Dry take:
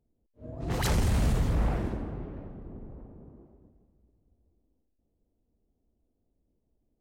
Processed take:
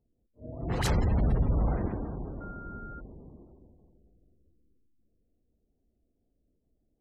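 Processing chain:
spring reverb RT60 3.1 s, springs 44/54 ms, chirp 40 ms, DRR 10.5 dB
0:02.40–0:02.99: steady tone 1,400 Hz −44 dBFS
gate on every frequency bin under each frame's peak −30 dB strong

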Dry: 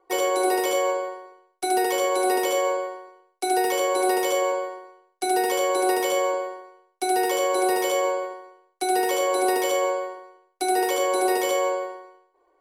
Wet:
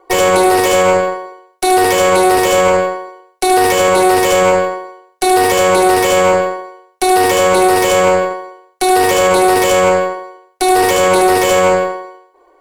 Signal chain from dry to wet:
tube saturation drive 19 dB, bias 0.7
boost into a limiter +20 dB
highs frequency-modulated by the lows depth 0.12 ms
level −1 dB

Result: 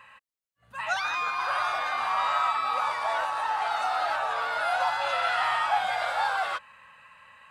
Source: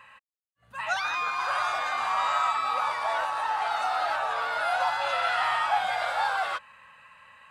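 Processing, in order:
0:01.31–0:02.73: parametric band 7,200 Hz −7.5 dB 0.38 octaves

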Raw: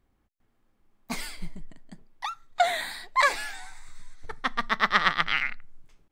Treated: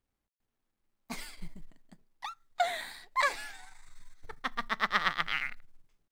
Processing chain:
mu-law and A-law mismatch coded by A
level −6 dB

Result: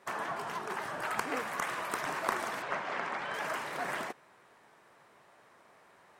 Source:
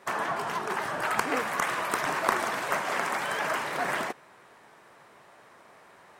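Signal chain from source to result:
0:02.62–0:03.34: low-pass filter 4,100 Hz 12 dB per octave
level −6.5 dB

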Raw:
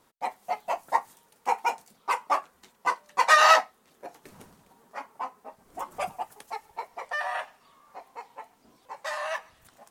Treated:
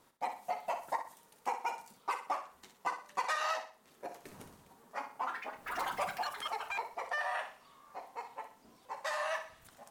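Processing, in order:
downward compressor 8 to 1, threshold −30 dBFS, peak gain reduction 17.5 dB
flutter between parallel walls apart 10.5 metres, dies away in 0.4 s
0:05.10–0:07.22: delay with pitch and tempo change per echo 93 ms, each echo +5 semitones, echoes 3
level −2 dB

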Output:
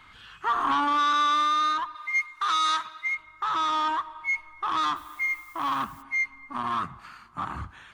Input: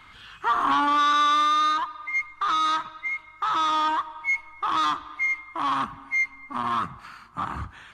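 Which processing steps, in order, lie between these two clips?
0:01.95–0:03.15: spectral tilt +3 dB per octave
0:04.95–0:06.01: background noise blue −54 dBFS
level −2.5 dB

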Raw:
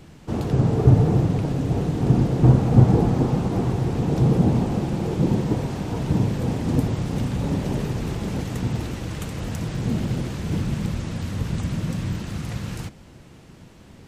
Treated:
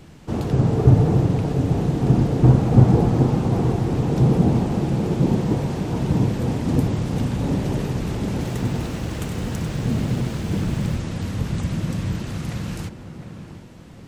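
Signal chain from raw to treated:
tape delay 710 ms, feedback 51%, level −7.5 dB, low-pass 1,200 Hz
0:08.31–0:10.96: feedback echo at a low word length 97 ms, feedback 35%, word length 8 bits, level −7 dB
level +1 dB

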